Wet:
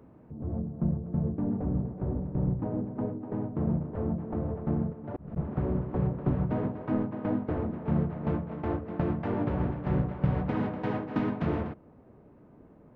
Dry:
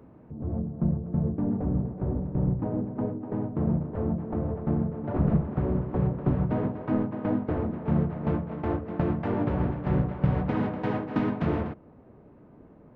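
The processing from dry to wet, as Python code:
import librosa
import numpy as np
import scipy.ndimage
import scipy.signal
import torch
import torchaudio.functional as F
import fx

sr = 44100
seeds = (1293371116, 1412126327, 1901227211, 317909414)

y = fx.auto_swell(x, sr, attack_ms=677.0, at=(4.92, 5.36), fade=0.02)
y = y * librosa.db_to_amplitude(-2.5)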